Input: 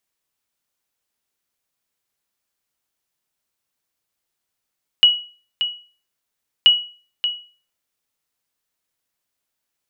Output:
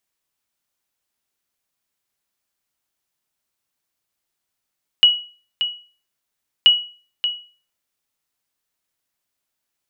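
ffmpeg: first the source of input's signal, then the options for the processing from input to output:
-f lavfi -i "aevalsrc='0.631*(sin(2*PI*2920*mod(t,1.63))*exp(-6.91*mod(t,1.63)/0.39)+0.316*sin(2*PI*2920*max(mod(t,1.63)-0.58,0))*exp(-6.91*max(mod(t,1.63)-0.58,0)/0.39))':d=3.26:s=44100"
-af "bandreject=f=480:w=13"

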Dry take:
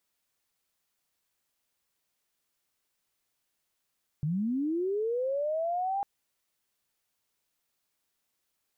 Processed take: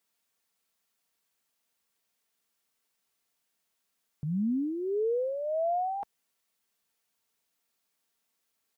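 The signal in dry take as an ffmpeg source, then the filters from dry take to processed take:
-f lavfi -i "aevalsrc='pow(10,(-26.5-1*t/1.8)/20)*sin(2*PI*(140*t+670*t*t/(2*1.8)))':d=1.8:s=44100"
-af "highpass=f=91:p=1,aecho=1:1:4.4:0.36"

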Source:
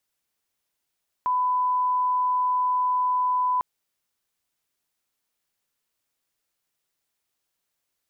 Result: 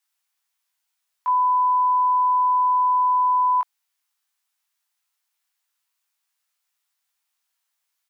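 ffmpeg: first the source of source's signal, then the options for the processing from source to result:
-f lavfi -i "sine=f=1000:d=2.35:r=44100,volume=-1.94dB"
-filter_complex "[0:a]highpass=f=800:w=0.5412,highpass=f=800:w=1.3066,asplit=2[a][b];[b]adelay=19,volume=-2dB[c];[a][c]amix=inputs=2:normalize=0"

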